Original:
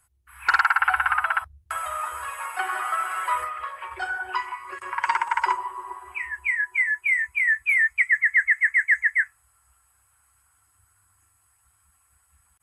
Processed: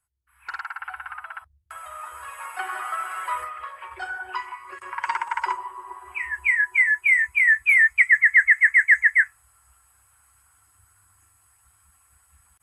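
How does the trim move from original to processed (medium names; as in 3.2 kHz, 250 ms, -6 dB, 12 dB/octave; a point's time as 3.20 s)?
1.29 s -14 dB
2.49 s -3 dB
5.85 s -3 dB
6.41 s +4 dB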